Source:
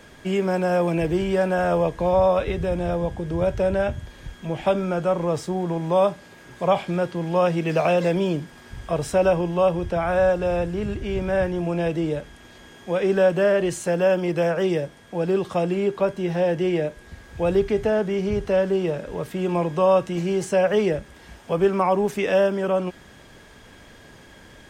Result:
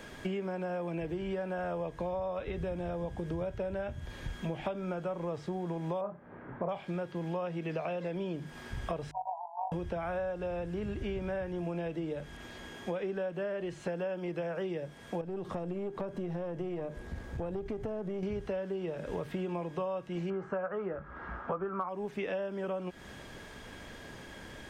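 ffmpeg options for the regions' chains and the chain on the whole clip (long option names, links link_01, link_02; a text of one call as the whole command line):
ffmpeg -i in.wav -filter_complex "[0:a]asettb=1/sr,asplit=3[link_01][link_02][link_03];[link_01]atrim=end=6.014[link_04];[link_02]atrim=start=6.01:end=6.69,asetpts=PTS-STARTPTS,afade=type=in:duration=0.004:curve=qsin,afade=type=out:start_time=0.676:duration=0.004:curve=qsin,lowpass=frequency=1600:width=0.5412,lowpass=frequency=1600:width=1.3066,asplit=2[link_05][link_06];[link_06]adelay=29,volume=-4.5dB[link_07];[link_05][link_07]amix=inputs=2:normalize=0,atrim=end_sample=29988[link_08];[link_03]atrim=start=6.686[link_09];[link_04][link_08]acrossfade=duration=0.004:curve1=hsin:curve2=qsin[link_10];[link_10][link_09]acrossfade=duration=0.004:curve1=qsin:curve2=hsin,asettb=1/sr,asplit=3[link_11][link_12][link_13];[link_11]atrim=end=9.114[link_14];[link_12]atrim=start=9.11:end=9.72,asetpts=PTS-STARTPTS,afade=type=in:duration=0.004:curve=qsin,afade=type=out:start_time=0.606:duration=0.004:curve=qsin,tremolo=f=50:d=0.621,asuperpass=centerf=820:order=12:qfactor=2.5[link_15];[link_13]atrim=start=9.716[link_16];[link_14][link_15]acrossfade=duration=0.004:curve1=hsin:curve2=qsin[link_17];[link_17][link_16]acrossfade=duration=0.004:curve1=qsin:curve2=hsin,asettb=1/sr,asplit=3[link_18][link_19][link_20];[link_18]atrim=end=15.214[link_21];[link_19]atrim=start=15.21:end=18.23,asetpts=PTS-STARTPTS,afade=type=in:duration=0.004:curve=qsin,afade=type=out:start_time=3.016:duration=0.004:curve=qsin,tiltshelf=frequency=1300:gain=5.5,acompressor=threshold=-31dB:ratio=2.5:attack=3.2:release=140:knee=1:detection=peak,aeval=exprs='(tanh(12.6*val(0)+0.5)-tanh(0.5))/12.6':channel_layout=same[link_22];[link_20]atrim=start=18.226[link_23];[link_21][link_22]acrossfade=duration=0.004:curve1=hsin:curve2=qsin[link_24];[link_24][link_23]acrossfade=duration=0.004:curve1=qsin:curve2=hsin,asettb=1/sr,asplit=3[link_25][link_26][link_27];[link_25]atrim=end=20.304[link_28];[link_26]atrim=start=20.3:end=21.89,asetpts=PTS-STARTPTS,afade=type=in:duration=0.004:curve=qsin,afade=type=out:start_time=1.586:duration=0.004:curve=qsin,lowpass=frequency=1300:width_type=q:width=6.5,asoftclip=type=hard:threshold=-3.5dB,asplit=2[link_29][link_30];[link_30]adelay=16,volume=-12dB[link_31];[link_29][link_31]amix=inputs=2:normalize=0,atrim=end_sample=70119[link_32];[link_27]atrim=start=21.886[link_33];[link_28][link_32]acrossfade=duration=0.004:curve1=hsin:curve2=qsin[link_34];[link_34][link_33]acrossfade=duration=0.004:curve1=qsin:curve2=hsin,acrossover=split=4100[link_35][link_36];[link_36]acompressor=threshold=-58dB:ratio=4:attack=1:release=60[link_37];[link_35][link_37]amix=inputs=2:normalize=0,bandreject=frequency=50:width_type=h:width=6,bandreject=frequency=100:width_type=h:width=6,bandreject=frequency=150:width_type=h:width=6,acompressor=threshold=-32dB:ratio=16" out.wav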